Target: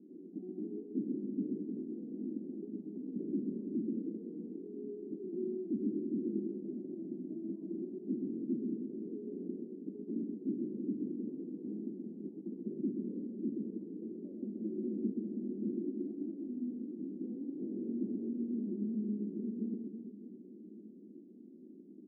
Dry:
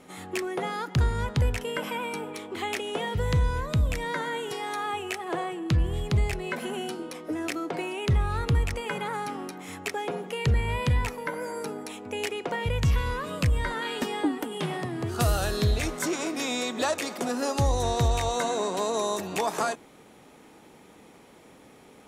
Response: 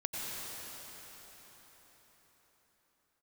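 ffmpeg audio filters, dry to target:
-af "aemphasis=mode=production:type=50fm,areverse,acompressor=threshold=0.0158:ratio=6,areverse,aeval=exprs='abs(val(0))':c=same,asuperpass=centerf=270:order=8:qfactor=1.6,aecho=1:1:130|325|617.5|1056|1714:0.631|0.398|0.251|0.158|0.1,volume=4.47"

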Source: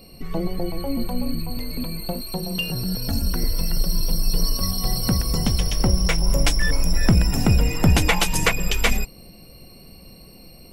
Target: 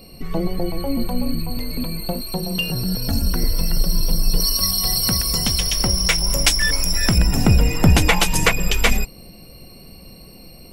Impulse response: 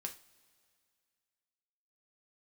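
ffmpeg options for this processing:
-filter_complex "[0:a]asettb=1/sr,asplit=3[s0][s1][s2];[s0]atrim=end=4.404[s3];[s1]atrim=start=4.4:end=7.18,asetpts=PTS-STARTPTS,afade=t=in:d=0.004:c=qsin,afade=t=out:st=2.776:d=0.004:c=qsin,tiltshelf=f=1300:g=-6[s4];[s2]atrim=start=7.176[s5];[s3][s4]acrossfade=d=0.004:c1=hsin:c2=qsin[s6];[s6][s5]acrossfade=d=0.004:c1=qsin:c2=hsin,volume=1.41"

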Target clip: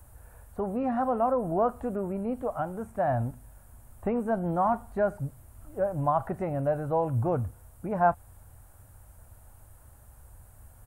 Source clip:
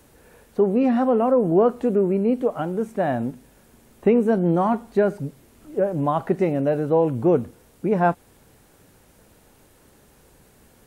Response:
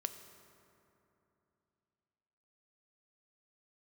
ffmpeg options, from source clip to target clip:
-filter_complex "[0:a]acrossover=split=2800[s0][s1];[s1]acompressor=threshold=0.00141:ratio=4:attack=1:release=60[s2];[s0][s2]amix=inputs=2:normalize=0,firequalizer=gain_entry='entry(100,0);entry(160,-18);entry(250,-20);entry(420,-24);entry(630,-11);entry(1400,-12);entry(2100,-20);entry(3600,-22);entry(5800,-19);entry(8700,-7)':delay=0.05:min_phase=1,volume=2.82"

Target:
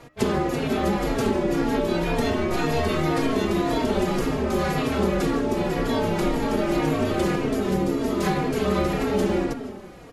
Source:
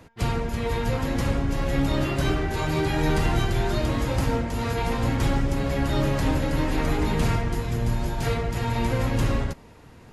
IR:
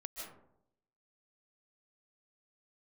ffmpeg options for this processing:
-filter_complex "[0:a]aeval=exprs='val(0)*sin(2*PI*310*n/s)':c=same,asplit=2[s0][s1];[1:a]atrim=start_sample=2205[s2];[s1][s2]afir=irnorm=-1:irlink=0,volume=0.473[s3];[s0][s3]amix=inputs=2:normalize=0,acompressor=threshold=0.0631:ratio=6,asplit=2[s4][s5];[s5]adelay=3.7,afreqshift=-1.9[s6];[s4][s6]amix=inputs=2:normalize=1,volume=2.66"

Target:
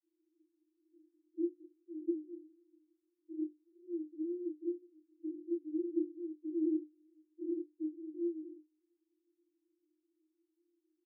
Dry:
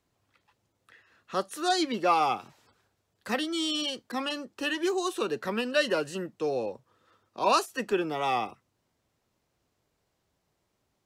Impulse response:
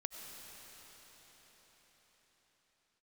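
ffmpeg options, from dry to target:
-filter_complex "[0:a]acompressor=threshold=0.0178:ratio=12,asoftclip=type=tanh:threshold=0.0447,asetrate=26990,aresample=44100,atempo=1.63392,asuperpass=centerf=330:order=20:qfactor=5.8,asplit=2[s0][s1];[s1]adelay=32,volume=0.596[s2];[s0][s2]amix=inputs=2:normalize=0,volume=2.99"

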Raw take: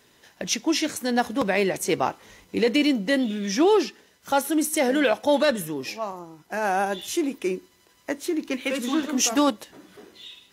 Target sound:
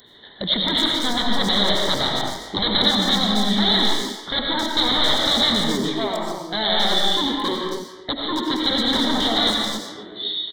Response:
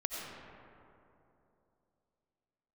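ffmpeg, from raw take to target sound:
-filter_complex "[0:a]aresample=8000,aeval=exprs='0.0501*(abs(mod(val(0)/0.0501+3,4)-2)-1)':c=same,aresample=44100,asplit=2[s0][s1];[s1]adelay=270,highpass=300,lowpass=3400,asoftclip=type=hard:threshold=0.0282,volume=0.282[s2];[s0][s2]amix=inputs=2:normalize=0[s3];[1:a]atrim=start_sample=2205,afade=t=out:st=0.34:d=0.01,atrim=end_sample=15435[s4];[s3][s4]afir=irnorm=-1:irlink=0,aexciter=amount=12.1:drive=1.2:freq=2200,asuperstop=centerf=2600:order=4:qfactor=1.1,volume=2.24"

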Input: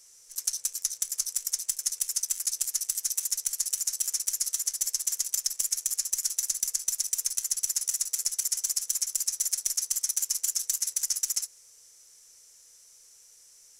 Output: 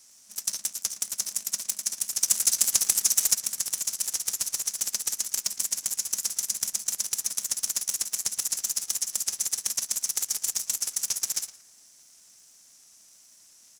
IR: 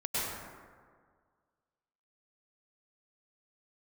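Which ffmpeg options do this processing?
-filter_complex "[0:a]asettb=1/sr,asplit=3[s0][s1][s2];[s0]atrim=end=2.224[s3];[s1]atrim=start=2.22:end=3.35,asetpts=PTS-STARTPTS,afade=t=in:d=0.004:c=qsin,afade=t=out:st=1.126:d=0.004:c=qsin,acontrast=81[s4];[s2]atrim=start=3.346[s5];[s3][s4]acrossfade=d=0.004:c1=hsin:c2=qsin[s6];[s6][s5]acrossfade=d=0.004:c1=qsin:c2=hsin,asplit=2[s7][s8];[s8]adelay=114,lowpass=f=1800:p=1,volume=0.422,asplit=2[s9][s10];[s10]adelay=114,lowpass=f=1800:p=1,volume=0.53,asplit=2[s11][s12];[s12]adelay=114,lowpass=f=1800:p=1,volume=0.53,asplit=2[s13][s14];[s14]adelay=114,lowpass=f=1800:p=1,volume=0.53,asplit=2[s15][s16];[s16]adelay=114,lowpass=f=1800:p=1,volume=0.53,asplit=2[s17][s18];[s18]adelay=114,lowpass=f=1800:p=1,volume=0.53[s19];[s9][s11][s13][s15][s17][s19]amix=inputs=6:normalize=0[s20];[s7][s20]amix=inputs=2:normalize=0,aeval=exprs='val(0)*sgn(sin(2*PI*210*n/s))':c=same"

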